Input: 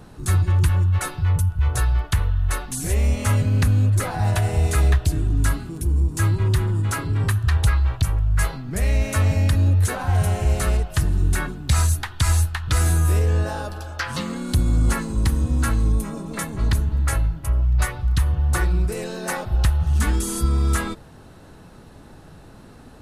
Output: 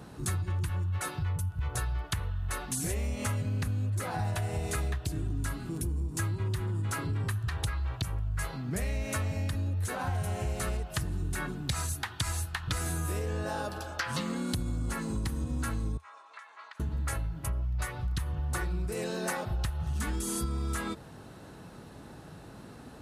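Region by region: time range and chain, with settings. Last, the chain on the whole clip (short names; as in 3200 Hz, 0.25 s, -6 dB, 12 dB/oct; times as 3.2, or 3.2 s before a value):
15.97–16.8 HPF 1000 Hz 24 dB/oct + compressor 12:1, threshold -35 dBFS + tape spacing loss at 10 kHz 28 dB
whole clip: HPF 60 Hz 12 dB/oct; bell 79 Hz -8 dB 0.23 oct; compressor, threshold -27 dBFS; gain -2 dB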